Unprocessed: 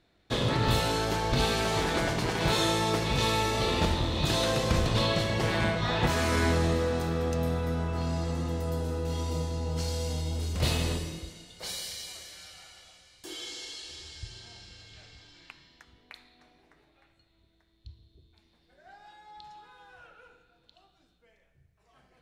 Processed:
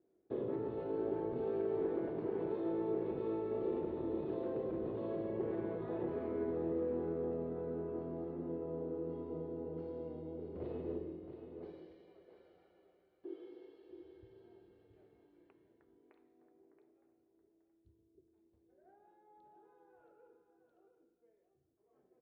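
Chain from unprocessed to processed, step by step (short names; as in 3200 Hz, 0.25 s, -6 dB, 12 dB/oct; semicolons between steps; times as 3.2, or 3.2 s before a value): limiter -21 dBFS, peak gain reduction 8.5 dB; band-pass 380 Hz, Q 4.1; air absorption 390 m; on a send: echo 0.675 s -9 dB; on the sum: gain +3 dB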